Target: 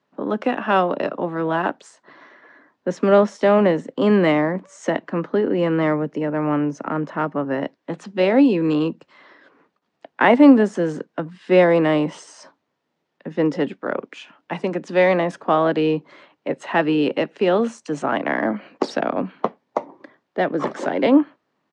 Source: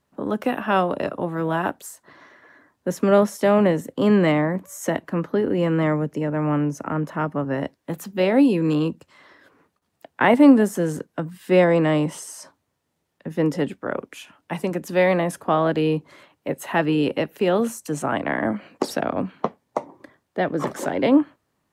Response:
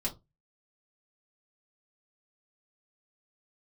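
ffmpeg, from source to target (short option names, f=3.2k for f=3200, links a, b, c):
-filter_complex "[0:a]adynamicsmooth=sensitivity=5.5:basefreq=7.3k,aresample=22050,aresample=44100,acrossover=split=160 6600:gain=0.0708 1 0.0891[a][b][c];[a][b][c]amix=inputs=3:normalize=0,volume=2.5dB"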